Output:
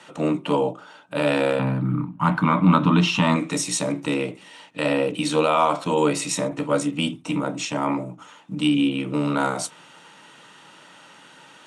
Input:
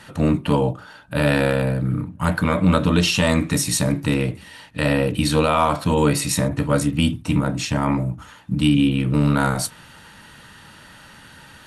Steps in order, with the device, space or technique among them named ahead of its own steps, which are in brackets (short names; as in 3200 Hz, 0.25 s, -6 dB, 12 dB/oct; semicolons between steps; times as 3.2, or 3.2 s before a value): 1.59–3.36 graphic EQ 125/250/500/1000/8000 Hz +11/+7/-12/+9/-12 dB; television speaker (speaker cabinet 190–8400 Hz, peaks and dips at 220 Hz -10 dB, 1700 Hz -8 dB, 4500 Hz -7 dB)